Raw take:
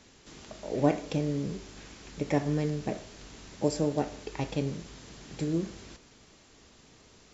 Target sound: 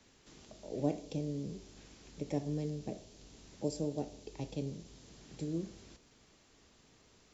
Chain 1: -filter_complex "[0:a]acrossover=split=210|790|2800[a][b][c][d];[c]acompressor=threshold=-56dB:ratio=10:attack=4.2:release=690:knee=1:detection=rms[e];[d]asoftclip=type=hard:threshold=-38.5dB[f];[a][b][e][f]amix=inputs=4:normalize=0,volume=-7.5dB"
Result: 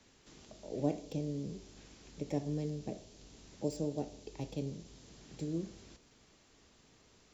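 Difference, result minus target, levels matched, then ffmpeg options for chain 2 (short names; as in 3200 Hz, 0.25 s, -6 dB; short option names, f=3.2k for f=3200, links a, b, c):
hard clip: distortion +33 dB
-filter_complex "[0:a]acrossover=split=210|790|2800[a][b][c][d];[c]acompressor=threshold=-56dB:ratio=10:attack=4.2:release=690:knee=1:detection=rms[e];[d]asoftclip=type=hard:threshold=-27dB[f];[a][b][e][f]amix=inputs=4:normalize=0,volume=-7.5dB"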